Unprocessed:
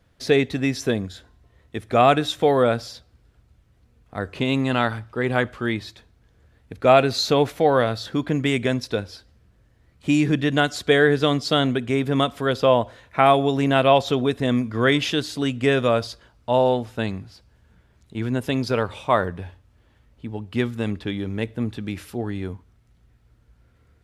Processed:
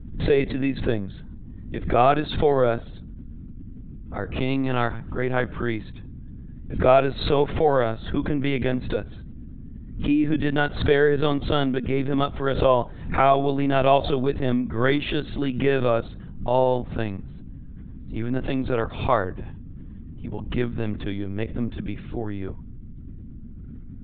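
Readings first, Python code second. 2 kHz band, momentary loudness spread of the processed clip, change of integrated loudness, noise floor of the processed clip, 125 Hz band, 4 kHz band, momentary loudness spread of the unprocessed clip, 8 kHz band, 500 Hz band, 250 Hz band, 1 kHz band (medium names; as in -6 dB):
-4.0 dB, 22 LU, -2.0 dB, -39 dBFS, -1.0 dB, -7.0 dB, 15 LU, under -40 dB, -1.5 dB, -2.0 dB, -2.0 dB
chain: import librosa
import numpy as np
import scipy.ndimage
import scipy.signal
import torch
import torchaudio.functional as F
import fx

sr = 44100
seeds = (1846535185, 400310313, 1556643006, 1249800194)

y = fx.add_hum(x, sr, base_hz=60, snr_db=14)
y = fx.lpc_vocoder(y, sr, seeds[0], excitation='pitch_kept', order=16)
y = fx.high_shelf(y, sr, hz=3000.0, db=-8.0)
y = fx.pre_swell(y, sr, db_per_s=98.0)
y = y * 10.0 ** (-1.5 / 20.0)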